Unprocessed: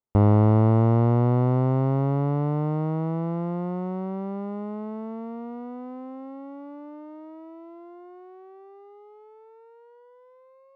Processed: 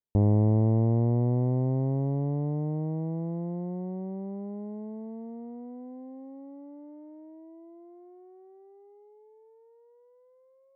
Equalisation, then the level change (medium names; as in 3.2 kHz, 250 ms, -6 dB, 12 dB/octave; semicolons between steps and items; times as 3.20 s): boxcar filter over 34 samples; -4.0 dB